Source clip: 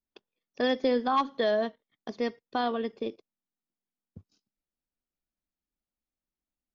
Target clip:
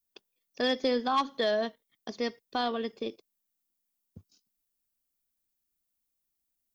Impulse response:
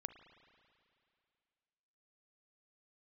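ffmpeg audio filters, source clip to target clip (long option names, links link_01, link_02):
-af "aeval=exprs='0.168*(cos(1*acos(clip(val(0)/0.168,-1,1)))-cos(1*PI/2))+0.00266*(cos(5*acos(clip(val(0)/0.168,-1,1)))-cos(5*PI/2))':channel_layout=same,aemphasis=mode=production:type=75kf,volume=-2.5dB"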